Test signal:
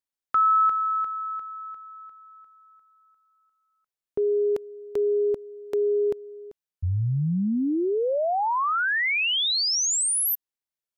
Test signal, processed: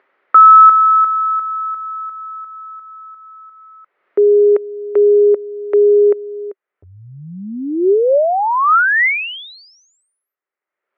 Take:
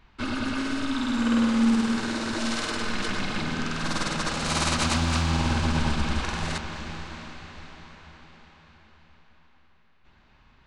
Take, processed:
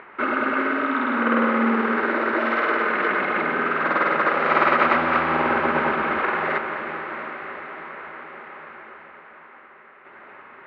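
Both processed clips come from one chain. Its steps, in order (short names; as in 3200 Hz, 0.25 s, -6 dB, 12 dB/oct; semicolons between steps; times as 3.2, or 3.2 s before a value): in parallel at -3 dB: upward compressor, threshold -30 dBFS; on the sum: speaker cabinet 380–2200 Hz, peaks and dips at 390 Hz +9 dB, 560 Hz +6 dB, 1300 Hz +7 dB, 2000 Hz +6 dB; gain +2.5 dB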